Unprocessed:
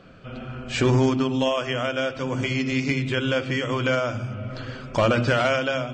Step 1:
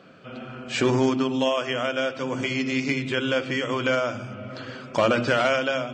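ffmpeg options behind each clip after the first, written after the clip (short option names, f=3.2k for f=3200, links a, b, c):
-af "highpass=180"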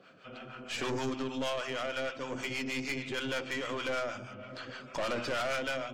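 -filter_complex "[0:a]lowshelf=f=420:g=-8,acrossover=split=640[a][b];[a]aeval=exprs='val(0)*(1-0.7/2+0.7/2*cos(2*PI*6.4*n/s))':c=same[c];[b]aeval=exprs='val(0)*(1-0.7/2-0.7/2*cos(2*PI*6.4*n/s))':c=same[d];[c][d]amix=inputs=2:normalize=0,aeval=exprs='(tanh(28.2*val(0)+0.4)-tanh(0.4))/28.2':c=same"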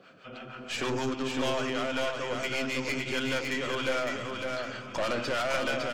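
-af "aecho=1:1:557|1114|1671|2228:0.631|0.164|0.0427|0.0111,volume=3dB"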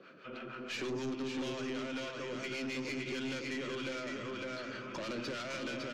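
-filter_complex "[0:a]highpass=150,equalizer=f=360:t=q:w=4:g=6,equalizer=f=740:t=q:w=4:g=-9,equalizer=f=3.2k:t=q:w=4:g=-5,equalizer=f=5k:t=q:w=4:g=-4,lowpass=f=5.8k:w=0.5412,lowpass=f=5.8k:w=1.3066,acrossover=split=300|3000[a][b][c];[b]acompressor=threshold=-40dB:ratio=6[d];[a][d][c]amix=inputs=3:normalize=0,aeval=exprs='(tanh(39.8*val(0)+0.2)-tanh(0.2))/39.8':c=same"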